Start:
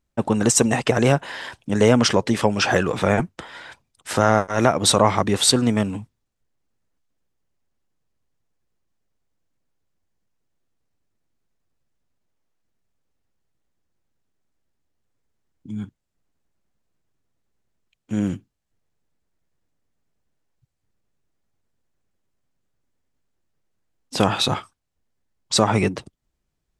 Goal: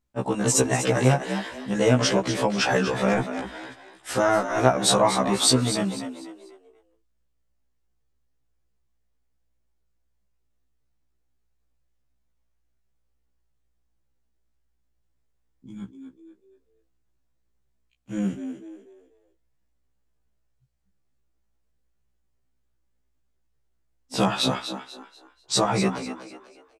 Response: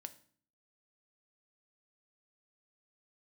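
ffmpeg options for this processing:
-filter_complex "[0:a]asplit=5[link_01][link_02][link_03][link_04][link_05];[link_02]adelay=245,afreqshift=58,volume=-10dB[link_06];[link_03]adelay=490,afreqshift=116,volume=-19.4dB[link_07];[link_04]adelay=735,afreqshift=174,volume=-28.7dB[link_08];[link_05]adelay=980,afreqshift=232,volume=-38.1dB[link_09];[link_01][link_06][link_07][link_08][link_09]amix=inputs=5:normalize=0,afftfilt=real='re*1.73*eq(mod(b,3),0)':imag='im*1.73*eq(mod(b,3),0)':win_size=2048:overlap=0.75,volume=-1dB"

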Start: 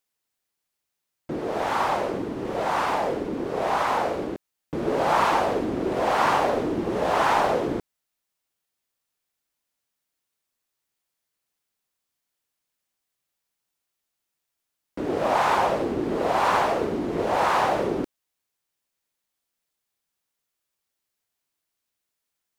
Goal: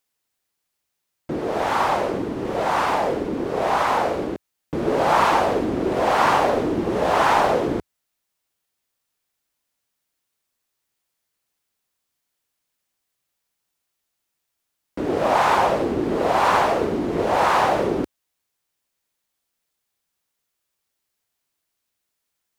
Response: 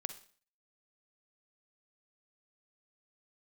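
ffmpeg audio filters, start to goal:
-af "equalizer=frequency=73:width=1.5:gain=2,volume=3.5dB"

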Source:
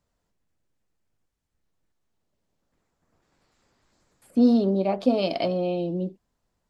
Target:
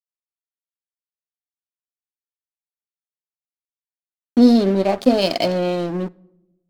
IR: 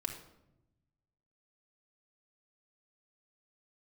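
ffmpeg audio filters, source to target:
-filter_complex "[0:a]bass=frequency=250:gain=-1,treble=frequency=4000:gain=9,aeval=exprs='sgn(val(0))*max(abs(val(0))-0.015,0)':channel_layout=same,asplit=2[link_01][link_02];[1:a]atrim=start_sample=2205[link_03];[link_02][link_03]afir=irnorm=-1:irlink=0,volume=-17dB[link_04];[link_01][link_04]amix=inputs=2:normalize=0,volume=6.5dB"

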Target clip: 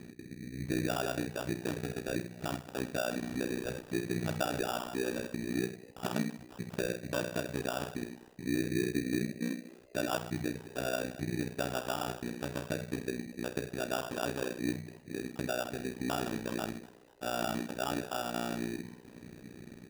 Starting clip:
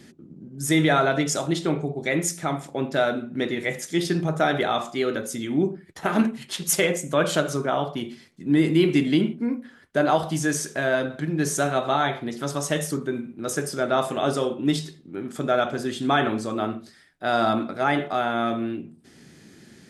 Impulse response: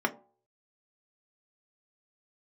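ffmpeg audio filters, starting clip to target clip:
-filter_complex "[0:a]asettb=1/sr,asplit=3[link_01][link_02][link_03];[link_01]atrim=end=2.964[link_04];[link_02]atrim=start=2.96:end=5.35,asetpts=PTS-STARTPTS,afade=type=in:duration=0.004:curve=qsin,afade=type=out:start_time=2.386:duration=0.004:curve=qsin,aeval=exprs='val(0)+0.5*0.0266*sgn(val(0))':channel_layout=same[link_05];[link_03]atrim=start=5.346[link_06];[link_04][link_05]acrossfade=duration=0.004:curve1=hsin:curve2=qsin[link_07];[link_07][link_06]acrossfade=duration=0.004:curve1=qsin:curve2=hsin,lowpass=1000,acompressor=threshold=-43dB:ratio=2,tremolo=f=61:d=1,acrusher=samples=21:mix=1:aa=0.000001,asplit=4[link_08][link_09][link_10][link_11];[link_09]adelay=245,afreqshift=92,volume=-22.5dB[link_12];[link_10]adelay=490,afreqshift=184,volume=-28.3dB[link_13];[link_11]adelay=735,afreqshift=276,volume=-34.2dB[link_14];[link_08][link_12][link_13][link_14]amix=inputs=4:normalize=0,volume=5.5dB"

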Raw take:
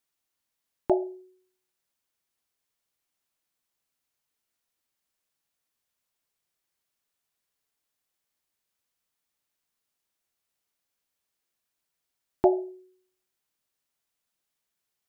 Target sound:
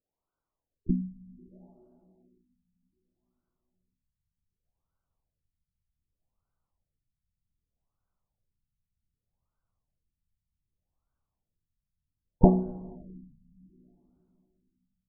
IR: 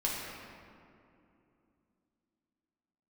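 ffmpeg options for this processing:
-filter_complex "[0:a]asplit=4[link_01][link_02][link_03][link_04];[link_02]asetrate=22050,aresample=44100,atempo=2,volume=-2dB[link_05];[link_03]asetrate=29433,aresample=44100,atempo=1.49831,volume=-4dB[link_06];[link_04]asetrate=58866,aresample=44100,atempo=0.749154,volume=-15dB[link_07];[link_01][link_05][link_06][link_07]amix=inputs=4:normalize=0,asubboost=boost=10:cutoff=110,asplit=2[link_08][link_09];[1:a]atrim=start_sample=2205[link_10];[link_09][link_10]afir=irnorm=-1:irlink=0,volume=-22dB[link_11];[link_08][link_11]amix=inputs=2:normalize=0,afftfilt=real='re*lt(b*sr/1024,220*pow(1600/220,0.5+0.5*sin(2*PI*0.65*pts/sr)))':imag='im*lt(b*sr/1024,220*pow(1600/220,0.5+0.5*sin(2*PI*0.65*pts/sr)))':win_size=1024:overlap=0.75,volume=-1.5dB"

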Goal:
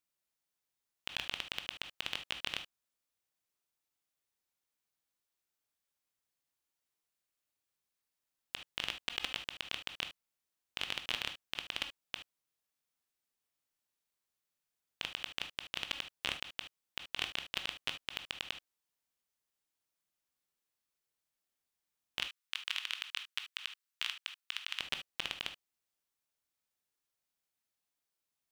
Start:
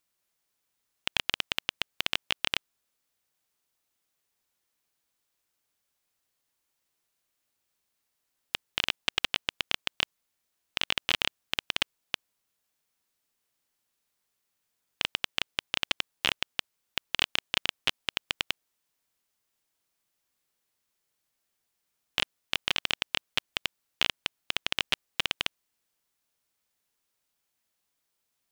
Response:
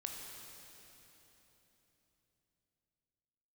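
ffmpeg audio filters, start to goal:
-filter_complex "[0:a]asettb=1/sr,asplit=3[link_01][link_02][link_03];[link_01]atrim=end=22.214[link_04];[link_02]atrim=start=22.21:end=24.8,asetpts=PTS-STARTPTS,afade=type=in:duration=0.004:curve=qsin,afade=type=out:start_time=2.586:duration=0.004:curve=qsin,highpass=frequency=1100:width=0.5412,highpass=frequency=1100:width=1.3066[link_05];[link_03]atrim=start=24.796[link_06];[link_04][link_05]acrossfade=duration=0.004:curve1=hsin:curve2=qsin[link_07];[link_07][link_06]acrossfade=duration=0.004:curve1=qsin:curve2=hsin[link_08];[1:a]atrim=start_sample=2205,atrim=end_sample=3528[link_09];[link_08][link_09]afir=irnorm=-1:irlink=0,volume=-5.5dB"

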